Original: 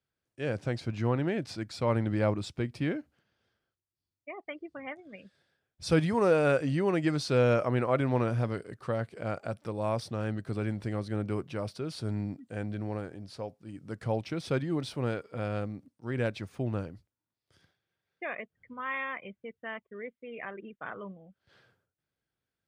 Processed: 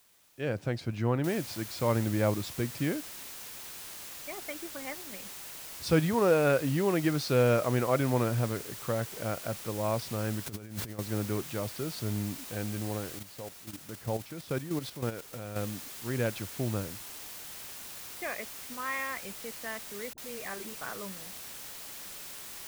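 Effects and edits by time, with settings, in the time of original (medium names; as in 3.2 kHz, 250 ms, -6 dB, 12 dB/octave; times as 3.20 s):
1.24 s: noise floor step -64 dB -44 dB
10.46–10.99 s: compressor with a negative ratio -38 dBFS, ratio -0.5
13.19–15.56 s: level held to a coarse grid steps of 10 dB
20.13–20.79 s: phase dispersion highs, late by 48 ms, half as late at 400 Hz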